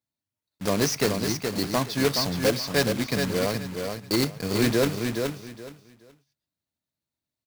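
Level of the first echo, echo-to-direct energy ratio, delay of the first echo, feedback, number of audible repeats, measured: -5.5 dB, -5.5 dB, 0.422 s, 22%, 3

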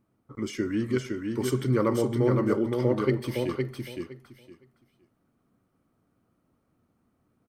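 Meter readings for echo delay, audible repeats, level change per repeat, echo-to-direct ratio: 0.513 s, 3, -15.0 dB, -4.0 dB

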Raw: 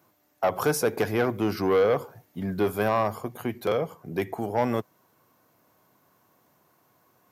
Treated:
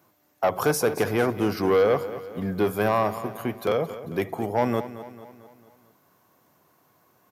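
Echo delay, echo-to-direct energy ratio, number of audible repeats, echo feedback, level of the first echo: 0.223 s, -12.5 dB, 4, 52%, -14.0 dB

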